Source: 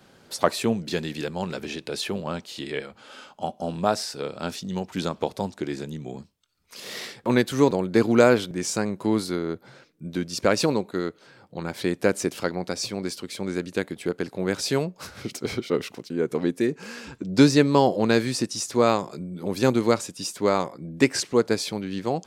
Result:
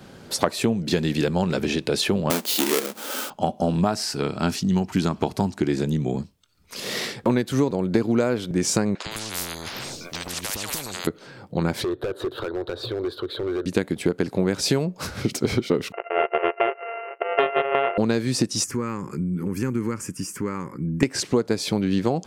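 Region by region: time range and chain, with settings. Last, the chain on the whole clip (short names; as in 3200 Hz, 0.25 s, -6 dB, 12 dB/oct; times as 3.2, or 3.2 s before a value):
2.3–3.3 half-waves squared off + HPF 230 Hz 24 dB/oct + high shelf 4900 Hz +12 dB
3.81–5.69 bell 520 Hz -12.5 dB 0.3 oct + notch 3600 Hz, Q 10
8.95–11.07 three bands offset in time mids, lows, highs 0.11/0.16 s, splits 640/5000 Hz + compressor, threshold -29 dBFS + spectral compressor 10:1
11.84–13.66 EQ curve 130 Hz 0 dB, 180 Hz -24 dB, 370 Hz +6 dB, 780 Hz -2 dB, 1500 Hz +5 dB, 2300 Hz -18 dB, 3800 Hz +4 dB, 5600 Hz -29 dB, 8500 Hz -24 dB, 13000 Hz -14 dB + compressor 2.5:1, threshold -34 dBFS + overloaded stage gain 31.5 dB
15.92–17.98 sample sorter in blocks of 64 samples + brick-wall FIR band-pass 350–3000 Hz + Doppler distortion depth 0.1 ms
18.64–21.03 compressor 2.5:1, threshold -33 dBFS + fixed phaser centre 1600 Hz, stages 4
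whole clip: low shelf 400 Hz +6.5 dB; compressor 16:1, threshold -23 dBFS; gain +6.5 dB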